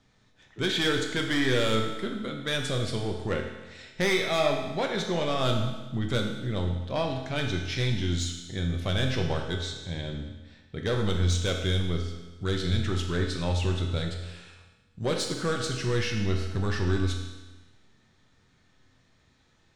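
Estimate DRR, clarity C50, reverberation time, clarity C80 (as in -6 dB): 1.5 dB, 4.5 dB, 1.2 s, 6.5 dB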